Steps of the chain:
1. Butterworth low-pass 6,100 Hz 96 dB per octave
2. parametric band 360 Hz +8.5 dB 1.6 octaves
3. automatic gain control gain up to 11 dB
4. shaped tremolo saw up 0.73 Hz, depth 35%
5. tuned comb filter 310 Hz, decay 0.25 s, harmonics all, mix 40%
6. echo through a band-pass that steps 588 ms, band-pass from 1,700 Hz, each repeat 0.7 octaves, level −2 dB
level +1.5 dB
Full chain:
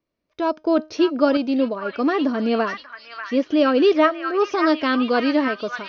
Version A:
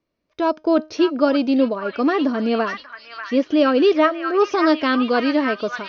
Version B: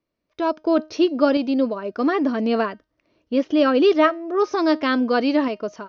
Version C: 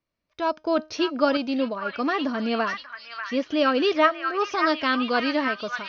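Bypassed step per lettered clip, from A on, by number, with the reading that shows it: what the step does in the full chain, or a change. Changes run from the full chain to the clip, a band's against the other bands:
4, change in momentary loudness spread −2 LU
6, echo-to-direct ratio −3.5 dB to none audible
2, 250 Hz band −5.5 dB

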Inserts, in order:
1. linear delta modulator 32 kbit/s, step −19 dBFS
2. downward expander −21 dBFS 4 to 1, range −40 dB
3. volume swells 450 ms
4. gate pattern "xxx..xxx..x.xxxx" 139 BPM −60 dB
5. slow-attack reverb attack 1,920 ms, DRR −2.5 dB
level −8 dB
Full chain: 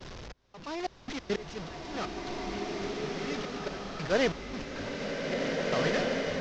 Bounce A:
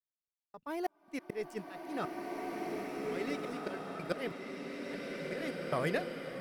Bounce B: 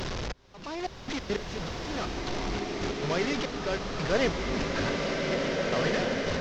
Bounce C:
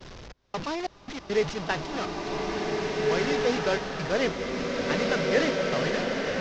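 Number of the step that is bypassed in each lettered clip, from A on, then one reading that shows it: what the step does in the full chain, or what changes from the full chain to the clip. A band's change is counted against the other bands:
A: 1, 4 kHz band −5.5 dB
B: 2, change in momentary loudness spread −3 LU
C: 3, change in momentary loudness spread −3 LU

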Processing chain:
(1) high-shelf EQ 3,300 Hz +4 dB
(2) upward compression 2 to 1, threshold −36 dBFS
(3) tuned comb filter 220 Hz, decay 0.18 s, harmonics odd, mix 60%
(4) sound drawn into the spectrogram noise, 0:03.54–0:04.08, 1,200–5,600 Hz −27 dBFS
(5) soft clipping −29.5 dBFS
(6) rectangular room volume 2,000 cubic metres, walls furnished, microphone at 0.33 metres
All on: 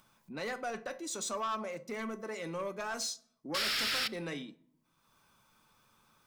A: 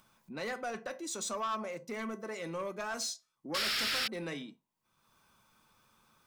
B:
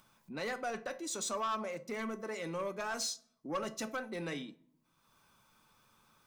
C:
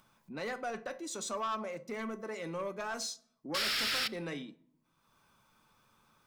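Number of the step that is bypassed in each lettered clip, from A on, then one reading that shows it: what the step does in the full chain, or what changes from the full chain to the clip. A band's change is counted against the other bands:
6, echo-to-direct ratio −18.0 dB to none audible
4, 4 kHz band −8.5 dB
1, 8 kHz band −2.0 dB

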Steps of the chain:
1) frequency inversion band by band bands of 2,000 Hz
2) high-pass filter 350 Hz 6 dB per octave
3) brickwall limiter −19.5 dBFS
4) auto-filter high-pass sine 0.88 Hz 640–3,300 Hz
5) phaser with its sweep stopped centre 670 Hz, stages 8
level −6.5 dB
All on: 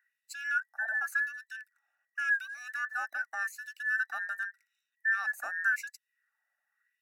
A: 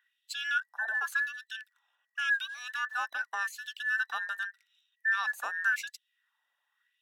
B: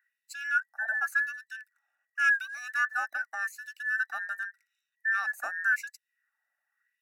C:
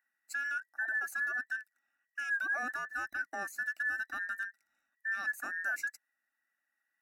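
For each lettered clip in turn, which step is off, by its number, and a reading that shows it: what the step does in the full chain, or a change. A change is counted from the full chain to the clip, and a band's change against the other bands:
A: 5, 4 kHz band +11.5 dB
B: 3, average gain reduction 1.5 dB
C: 4, 500 Hz band +7.0 dB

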